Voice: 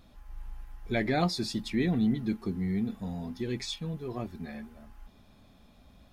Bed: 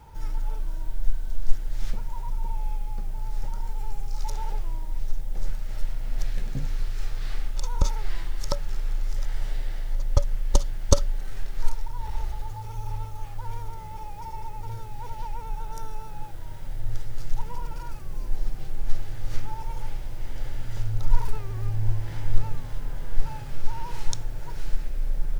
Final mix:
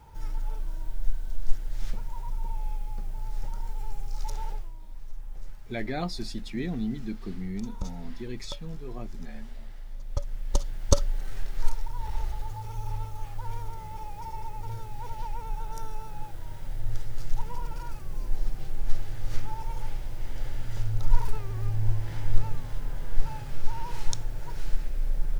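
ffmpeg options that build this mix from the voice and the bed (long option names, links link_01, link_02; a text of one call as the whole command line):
ffmpeg -i stem1.wav -i stem2.wav -filter_complex "[0:a]adelay=4800,volume=-4.5dB[link_01];[1:a]volume=8.5dB,afade=type=out:start_time=4.45:duration=0.27:silence=0.334965,afade=type=in:start_time=10:duration=1.18:silence=0.266073[link_02];[link_01][link_02]amix=inputs=2:normalize=0" out.wav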